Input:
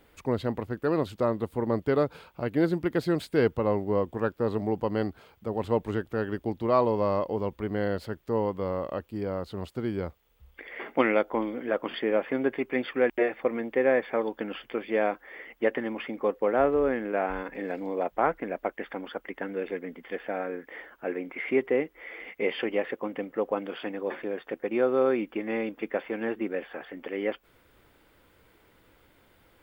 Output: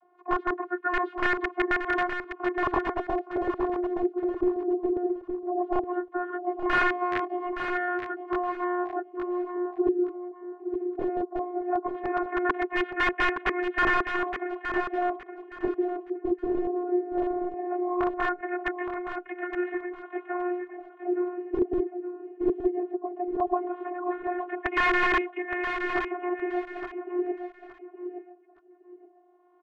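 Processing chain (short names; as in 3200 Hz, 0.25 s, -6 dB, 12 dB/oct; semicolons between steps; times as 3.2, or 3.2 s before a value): spectral limiter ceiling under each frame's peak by 16 dB; vocoder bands 32, saw 357 Hz; wrapped overs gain 20.5 dB; LFO low-pass sine 0.17 Hz 380–1900 Hz; on a send: feedback echo 0.868 s, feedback 24%, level -8 dB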